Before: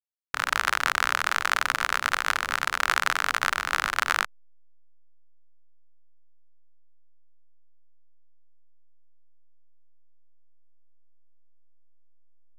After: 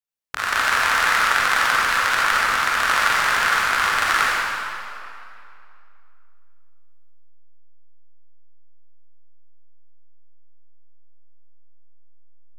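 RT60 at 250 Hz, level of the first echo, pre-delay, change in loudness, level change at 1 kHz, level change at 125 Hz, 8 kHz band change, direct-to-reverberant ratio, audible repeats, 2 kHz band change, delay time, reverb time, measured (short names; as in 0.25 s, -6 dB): 2.4 s, none, 36 ms, +7.0 dB, +7.5 dB, +6.5 dB, +6.0 dB, -6.5 dB, none, +7.5 dB, none, 2.6 s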